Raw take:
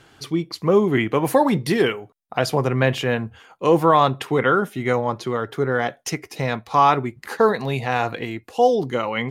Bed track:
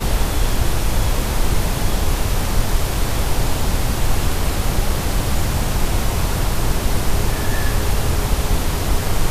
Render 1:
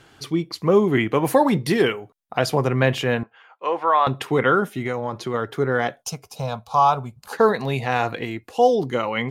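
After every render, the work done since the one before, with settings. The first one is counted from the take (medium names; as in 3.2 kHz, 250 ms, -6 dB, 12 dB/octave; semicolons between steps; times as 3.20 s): 3.23–4.07 s: band-pass 740–2500 Hz; 4.78–5.34 s: compression 4:1, threshold -21 dBFS; 6.02–7.33 s: static phaser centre 800 Hz, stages 4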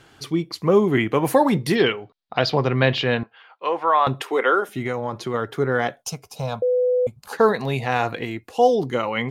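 1.75–3.69 s: resonant high shelf 6.2 kHz -14 dB, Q 3; 4.21–4.69 s: high-pass 340 Hz 24 dB/octave; 6.62–7.07 s: bleep 499 Hz -16 dBFS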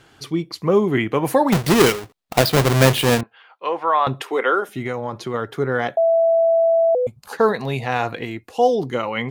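1.52–3.21 s: square wave that keeps the level; 5.97–6.95 s: bleep 662 Hz -12.5 dBFS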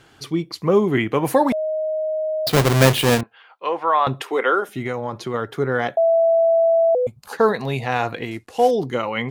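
1.52–2.47 s: bleep 625 Hz -20 dBFS; 8.31–8.71 s: CVSD coder 64 kbps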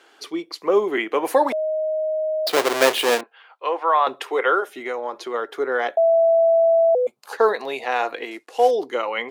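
high-pass 350 Hz 24 dB/octave; treble shelf 7.3 kHz -4.5 dB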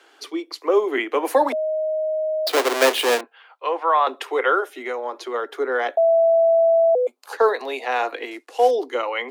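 steep high-pass 240 Hz 96 dB/octave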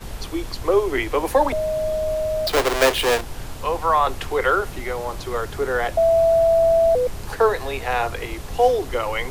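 add bed track -14.5 dB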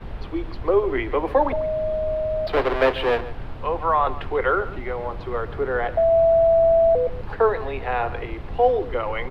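distance through air 410 m; delay 142 ms -16 dB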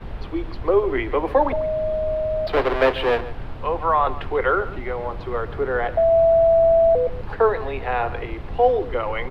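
trim +1 dB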